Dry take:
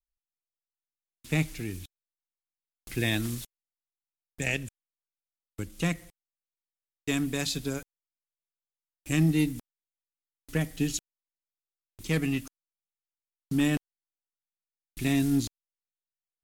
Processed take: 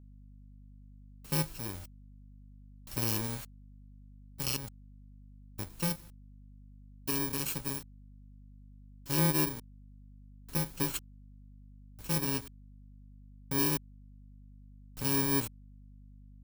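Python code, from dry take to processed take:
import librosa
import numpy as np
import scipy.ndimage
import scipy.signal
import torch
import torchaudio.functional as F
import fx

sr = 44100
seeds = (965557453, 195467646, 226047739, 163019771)

y = fx.bit_reversed(x, sr, seeds[0], block=64)
y = fx.add_hum(y, sr, base_hz=50, snr_db=16)
y = y * 10.0 ** (-4.0 / 20.0)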